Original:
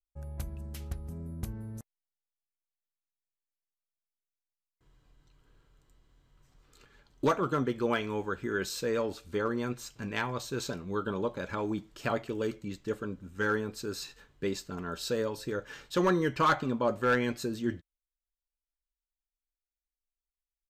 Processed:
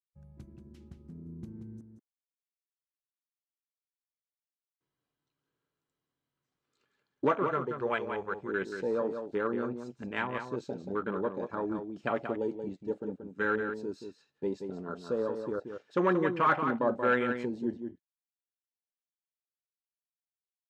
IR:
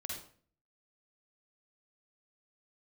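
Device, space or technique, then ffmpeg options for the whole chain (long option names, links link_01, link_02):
over-cleaned archive recording: -filter_complex "[0:a]highpass=180,lowpass=6600,afwtdn=0.0126,asettb=1/sr,asplit=3[link_01][link_02][link_03];[link_01]atrim=end=7.434[link_04];[link_02]atrim=start=7.43:end=8.48,asetpts=PTS-STARTPTS,afade=type=in:duration=0.004:curve=qsin,afade=type=out:start_time=1.046:duration=0.004:curve=qsin,equalizer=frequency=270:width_type=o:width=0.64:gain=-12[link_05];[link_03]atrim=start=8.476[link_06];[link_04][link_05]acrossfade=duration=0.004:curve1=hsin:curve2=qsin[link_07];[link_07][link_06]acrossfade=duration=0.004:curve1=qsin:curve2=hsin,asplit=2[link_08][link_09];[link_09]adelay=180.8,volume=-7dB,highshelf=frequency=4000:gain=-4.07[link_10];[link_08][link_10]amix=inputs=2:normalize=0"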